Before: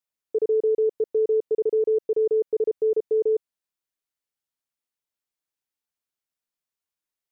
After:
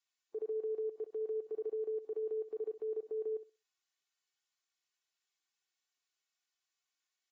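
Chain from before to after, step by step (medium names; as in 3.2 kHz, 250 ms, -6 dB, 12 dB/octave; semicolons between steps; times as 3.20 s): Bessel high-pass 150 Hz, order 2; tilt shelf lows -9.5 dB, about 630 Hz; band-stop 570 Hz, Q 12; comb 2.7 ms, depth 70%; peak limiter -28 dBFS, peak gain reduction 10.5 dB; flutter echo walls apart 11 m, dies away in 0.27 s; trim -6 dB; AAC 24 kbps 32 kHz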